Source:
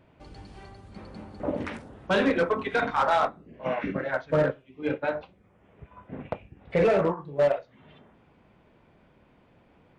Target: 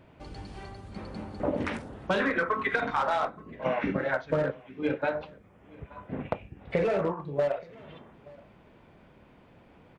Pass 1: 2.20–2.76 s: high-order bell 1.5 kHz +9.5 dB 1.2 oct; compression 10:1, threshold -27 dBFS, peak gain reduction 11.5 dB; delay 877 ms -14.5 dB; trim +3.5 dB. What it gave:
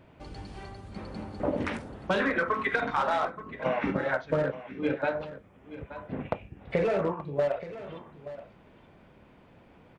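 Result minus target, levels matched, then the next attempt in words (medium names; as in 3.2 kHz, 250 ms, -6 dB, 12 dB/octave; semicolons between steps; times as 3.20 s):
echo-to-direct +9.5 dB
2.20–2.76 s: high-order bell 1.5 kHz +9.5 dB 1.2 oct; compression 10:1, threshold -27 dBFS, peak gain reduction 11.5 dB; delay 877 ms -24 dB; trim +3.5 dB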